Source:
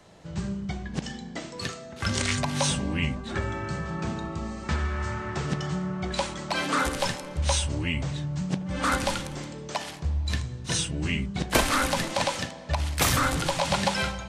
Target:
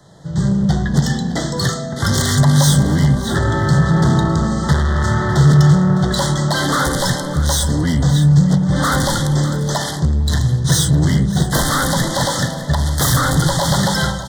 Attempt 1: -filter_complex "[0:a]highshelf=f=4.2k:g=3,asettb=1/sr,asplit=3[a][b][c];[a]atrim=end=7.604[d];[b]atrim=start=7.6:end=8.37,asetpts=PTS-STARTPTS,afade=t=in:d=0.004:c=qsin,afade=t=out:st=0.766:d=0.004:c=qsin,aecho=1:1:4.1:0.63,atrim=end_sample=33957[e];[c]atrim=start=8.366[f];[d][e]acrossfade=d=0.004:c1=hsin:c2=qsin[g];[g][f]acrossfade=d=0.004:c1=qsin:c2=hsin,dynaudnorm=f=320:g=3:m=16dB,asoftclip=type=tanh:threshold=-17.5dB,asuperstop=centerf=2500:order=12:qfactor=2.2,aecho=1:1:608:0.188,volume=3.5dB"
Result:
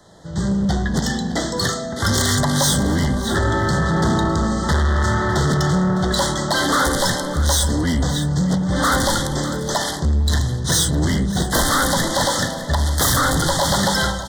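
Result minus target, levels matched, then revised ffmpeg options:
125 Hz band -4.0 dB
-filter_complex "[0:a]highshelf=f=4.2k:g=3,asettb=1/sr,asplit=3[a][b][c];[a]atrim=end=7.604[d];[b]atrim=start=7.6:end=8.37,asetpts=PTS-STARTPTS,afade=t=in:d=0.004:c=qsin,afade=t=out:st=0.766:d=0.004:c=qsin,aecho=1:1:4.1:0.63,atrim=end_sample=33957[e];[c]atrim=start=8.366[f];[d][e]acrossfade=d=0.004:c1=hsin:c2=qsin[g];[g][f]acrossfade=d=0.004:c1=qsin:c2=hsin,dynaudnorm=f=320:g=3:m=16dB,asoftclip=type=tanh:threshold=-17.5dB,asuperstop=centerf=2500:order=12:qfactor=2.2,equalizer=f=140:t=o:w=0.49:g=12,aecho=1:1:608:0.188,volume=3.5dB"

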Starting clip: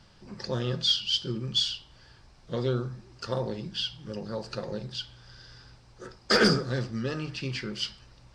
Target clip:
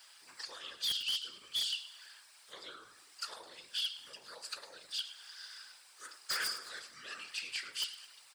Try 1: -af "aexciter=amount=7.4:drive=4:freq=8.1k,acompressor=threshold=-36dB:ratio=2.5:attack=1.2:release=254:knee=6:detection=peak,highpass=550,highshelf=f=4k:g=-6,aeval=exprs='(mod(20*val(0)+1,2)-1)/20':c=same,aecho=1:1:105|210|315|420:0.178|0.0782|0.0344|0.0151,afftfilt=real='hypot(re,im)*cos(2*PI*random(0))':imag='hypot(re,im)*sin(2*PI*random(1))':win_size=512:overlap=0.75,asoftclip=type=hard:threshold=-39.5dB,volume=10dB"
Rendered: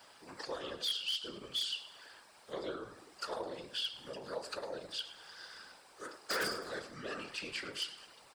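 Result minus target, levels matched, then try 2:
500 Hz band +17.0 dB; 8000 Hz band -3.0 dB
-af "aexciter=amount=7.4:drive=4:freq=8.1k,acompressor=threshold=-36dB:ratio=2.5:attack=1.2:release=254:knee=6:detection=peak,highpass=1.6k,aeval=exprs='(mod(20*val(0)+1,2)-1)/20':c=same,aecho=1:1:105|210|315|420:0.178|0.0782|0.0344|0.0151,afftfilt=real='hypot(re,im)*cos(2*PI*random(0))':imag='hypot(re,im)*sin(2*PI*random(1))':win_size=512:overlap=0.75,asoftclip=type=hard:threshold=-39.5dB,volume=10dB"

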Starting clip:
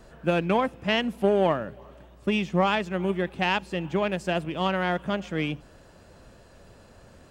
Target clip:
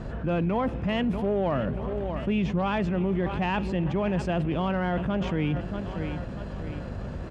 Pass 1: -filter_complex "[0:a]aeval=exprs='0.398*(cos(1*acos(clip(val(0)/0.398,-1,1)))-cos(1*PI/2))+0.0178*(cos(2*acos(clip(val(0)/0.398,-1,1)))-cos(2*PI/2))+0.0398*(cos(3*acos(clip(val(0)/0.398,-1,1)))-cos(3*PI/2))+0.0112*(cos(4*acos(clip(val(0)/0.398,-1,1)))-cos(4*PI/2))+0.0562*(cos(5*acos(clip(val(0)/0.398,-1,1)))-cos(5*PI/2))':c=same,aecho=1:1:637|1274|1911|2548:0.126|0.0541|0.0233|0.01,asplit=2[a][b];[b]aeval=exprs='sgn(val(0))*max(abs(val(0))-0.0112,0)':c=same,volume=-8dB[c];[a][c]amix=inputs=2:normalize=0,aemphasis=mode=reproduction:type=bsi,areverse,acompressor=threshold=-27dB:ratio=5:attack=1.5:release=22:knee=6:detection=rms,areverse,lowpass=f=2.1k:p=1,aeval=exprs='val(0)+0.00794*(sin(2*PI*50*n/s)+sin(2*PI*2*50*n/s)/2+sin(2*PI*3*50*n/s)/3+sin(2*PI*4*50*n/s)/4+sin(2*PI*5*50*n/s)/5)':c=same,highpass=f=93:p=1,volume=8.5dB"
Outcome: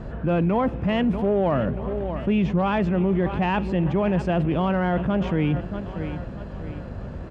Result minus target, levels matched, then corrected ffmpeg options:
compressor: peak gain reduction -5 dB; 4000 Hz band -3.5 dB
-filter_complex "[0:a]aeval=exprs='0.398*(cos(1*acos(clip(val(0)/0.398,-1,1)))-cos(1*PI/2))+0.0178*(cos(2*acos(clip(val(0)/0.398,-1,1)))-cos(2*PI/2))+0.0398*(cos(3*acos(clip(val(0)/0.398,-1,1)))-cos(3*PI/2))+0.0112*(cos(4*acos(clip(val(0)/0.398,-1,1)))-cos(4*PI/2))+0.0562*(cos(5*acos(clip(val(0)/0.398,-1,1)))-cos(5*PI/2))':c=same,aecho=1:1:637|1274|1911|2548:0.126|0.0541|0.0233|0.01,asplit=2[a][b];[b]aeval=exprs='sgn(val(0))*max(abs(val(0))-0.0112,0)':c=same,volume=-8dB[c];[a][c]amix=inputs=2:normalize=0,aemphasis=mode=reproduction:type=bsi,areverse,acompressor=threshold=-33dB:ratio=5:attack=1.5:release=22:knee=6:detection=rms,areverse,lowpass=f=5k:p=1,aeval=exprs='val(0)+0.00794*(sin(2*PI*50*n/s)+sin(2*PI*2*50*n/s)/2+sin(2*PI*3*50*n/s)/3+sin(2*PI*4*50*n/s)/4+sin(2*PI*5*50*n/s)/5)':c=same,highpass=f=93:p=1,volume=8.5dB"

